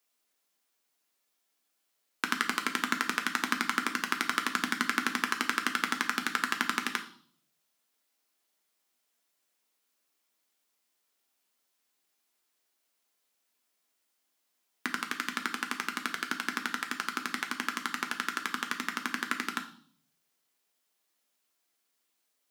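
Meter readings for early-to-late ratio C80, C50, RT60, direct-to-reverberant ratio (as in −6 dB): 16.0 dB, 12.0 dB, 0.50 s, 4.5 dB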